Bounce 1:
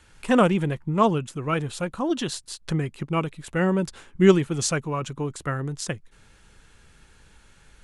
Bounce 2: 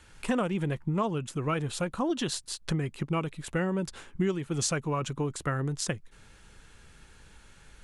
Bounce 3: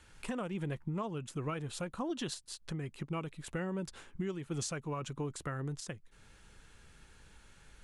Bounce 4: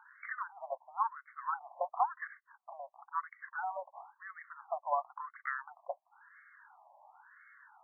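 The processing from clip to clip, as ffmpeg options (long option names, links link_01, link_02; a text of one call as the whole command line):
ffmpeg -i in.wav -af "acompressor=threshold=-25dB:ratio=8" out.wav
ffmpeg -i in.wav -af "alimiter=limit=-23.5dB:level=0:latency=1:release=486,volume=-4.5dB" out.wav
ffmpeg -i in.wav -af "highpass=frequency=180:width=0.5412,highpass=frequency=180:width=1.3066,equalizer=frequency=330:width_type=q:width=4:gain=5,equalizer=frequency=750:width_type=q:width=4:gain=8,equalizer=frequency=1300:width_type=q:width=4:gain=-7,lowpass=frequency=2400:width=0.5412,lowpass=frequency=2400:width=1.3066,aeval=exprs='0.0668*(cos(1*acos(clip(val(0)/0.0668,-1,1)))-cos(1*PI/2))+0.00422*(cos(4*acos(clip(val(0)/0.0668,-1,1)))-cos(4*PI/2))':channel_layout=same,afftfilt=real='re*between(b*sr/1024,780*pow(1600/780,0.5+0.5*sin(2*PI*0.97*pts/sr))/1.41,780*pow(1600/780,0.5+0.5*sin(2*PI*0.97*pts/sr))*1.41)':imag='im*between(b*sr/1024,780*pow(1600/780,0.5+0.5*sin(2*PI*0.97*pts/sr))/1.41,780*pow(1600/780,0.5+0.5*sin(2*PI*0.97*pts/sr))*1.41)':win_size=1024:overlap=0.75,volume=11dB" out.wav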